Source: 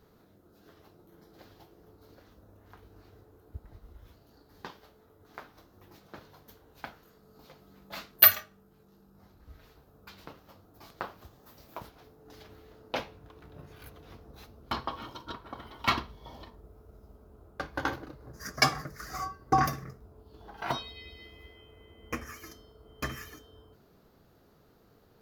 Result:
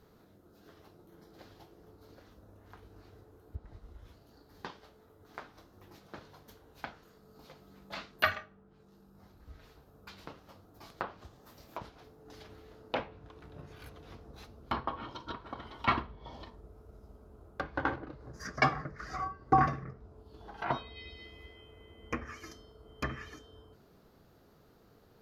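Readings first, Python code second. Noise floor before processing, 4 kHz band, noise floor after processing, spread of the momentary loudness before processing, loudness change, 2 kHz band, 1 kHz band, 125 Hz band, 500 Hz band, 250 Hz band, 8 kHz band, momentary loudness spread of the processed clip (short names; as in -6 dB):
-62 dBFS, -8.5 dB, -62 dBFS, 22 LU, -7.0 dB, -1.5 dB, 0.0 dB, 0.0 dB, 0.0 dB, 0.0 dB, -13.5 dB, 24 LU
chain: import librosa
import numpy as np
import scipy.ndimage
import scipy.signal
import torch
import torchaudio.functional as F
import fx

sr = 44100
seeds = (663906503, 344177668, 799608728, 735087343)

y = fx.env_lowpass_down(x, sr, base_hz=2200.0, full_db=-34.0)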